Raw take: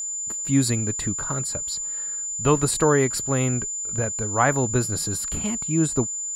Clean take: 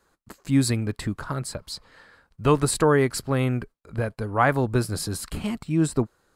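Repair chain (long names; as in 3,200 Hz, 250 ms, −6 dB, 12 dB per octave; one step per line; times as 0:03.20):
notch filter 7,100 Hz, Q 30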